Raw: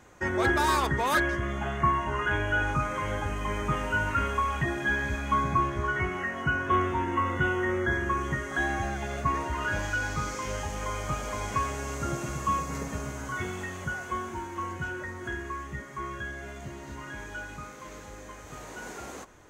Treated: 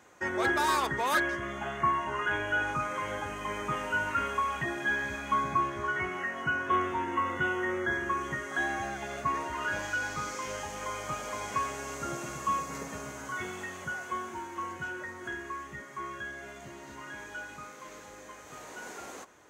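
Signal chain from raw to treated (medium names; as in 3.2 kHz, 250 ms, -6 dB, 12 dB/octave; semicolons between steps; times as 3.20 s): high-pass 320 Hz 6 dB/octave; trim -1.5 dB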